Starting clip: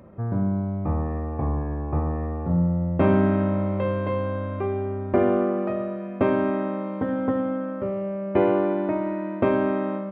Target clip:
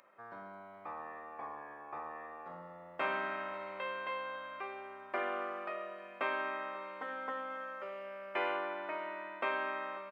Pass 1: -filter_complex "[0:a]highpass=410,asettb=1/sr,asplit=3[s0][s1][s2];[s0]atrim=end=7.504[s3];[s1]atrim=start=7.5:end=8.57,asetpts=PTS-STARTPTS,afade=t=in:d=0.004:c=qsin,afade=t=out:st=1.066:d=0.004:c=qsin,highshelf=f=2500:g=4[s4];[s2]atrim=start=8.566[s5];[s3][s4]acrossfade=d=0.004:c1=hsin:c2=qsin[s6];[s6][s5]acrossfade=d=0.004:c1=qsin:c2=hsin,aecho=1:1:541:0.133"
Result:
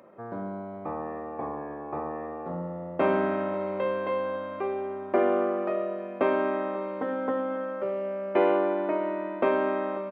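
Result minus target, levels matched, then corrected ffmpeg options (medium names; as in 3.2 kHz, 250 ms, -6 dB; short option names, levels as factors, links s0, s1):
500 Hz band +4.5 dB
-filter_complex "[0:a]highpass=1400,asettb=1/sr,asplit=3[s0][s1][s2];[s0]atrim=end=7.504[s3];[s1]atrim=start=7.5:end=8.57,asetpts=PTS-STARTPTS,afade=t=in:d=0.004:c=qsin,afade=t=out:st=1.066:d=0.004:c=qsin,highshelf=f=2500:g=4[s4];[s2]atrim=start=8.566[s5];[s3][s4]acrossfade=d=0.004:c1=hsin:c2=qsin[s6];[s6][s5]acrossfade=d=0.004:c1=qsin:c2=hsin,aecho=1:1:541:0.133"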